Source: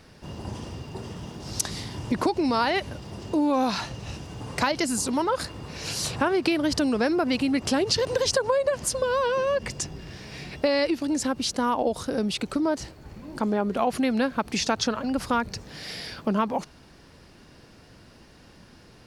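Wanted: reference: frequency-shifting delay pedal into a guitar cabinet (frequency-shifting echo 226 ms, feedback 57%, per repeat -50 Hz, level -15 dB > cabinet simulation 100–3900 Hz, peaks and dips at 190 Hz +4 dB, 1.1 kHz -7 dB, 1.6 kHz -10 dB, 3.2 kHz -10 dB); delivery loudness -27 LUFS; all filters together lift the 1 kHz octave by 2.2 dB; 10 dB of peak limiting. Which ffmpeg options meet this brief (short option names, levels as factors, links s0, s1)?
-filter_complex "[0:a]equalizer=f=1000:t=o:g=7,alimiter=limit=0.168:level=0:latency=1,asplit=7[s0][s1][s2][s3][s4][s5][s6];[s1]adelay=226,afreqshift=-50,volume=0.178[s7];[s2]adelay=452,afreqshift=-100,volume=0.101[s8];[s3]adelay=678,afreqshift=-150,volume=0.0575[s9];[s4]adelay=904,afreqshift=-200,volume=0.0331[s10];[s5]adelay=1130,afreqshift=-250,volume=0.0188[s11];[s6]adelay=1356,afreqshift=-300,volume=0.0107[s12];[s0][s7][s8][s9][s10][s11][s12]amix=inputs=7:normalize=0,highpass=100,equalizer=f=190:t=q:w=4:g=4,equalizer=f=1100:t=q:w=4:g=-7,equalizer=f=1600:t=q:w=4:g=-10,equalizer=f=3200:t=q:w=4:g=-10,lowpass=f=3900:w=0.5412,lowpass=f=3900:w=1.3066,volume=1.12"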